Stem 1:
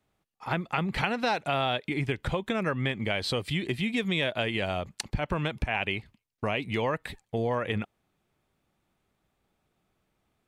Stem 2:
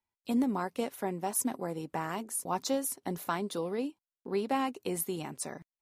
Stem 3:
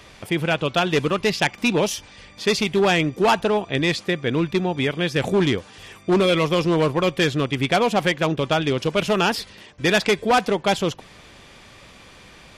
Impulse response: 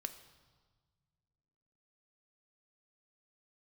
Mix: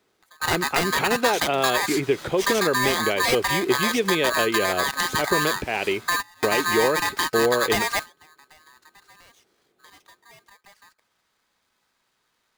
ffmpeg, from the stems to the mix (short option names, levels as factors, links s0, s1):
-filter_complex "[0:a]highpass=f=220:p=1,equalizer=f=390:t=o:w=0.85:g=12.5,volume=1.26,asplit=2[s0][s1];[1:a]adelay=450,volume=0.168[s2];[2:a]highpass=55,acompressor=threshold=0.0631:ratio=6,aeval=exprs='val(0)*sgn(sin(2*PI*1400*n/s))':c=same,volume=1.33[s3];[s1]apad=whole_len=554767[s4];[s3][s4]sidechaingate=range=0.0398:threshold=0.002:ratio=16:detection=peak[s5];[s0][s2][s5]amix=inputs=3:normalize=0"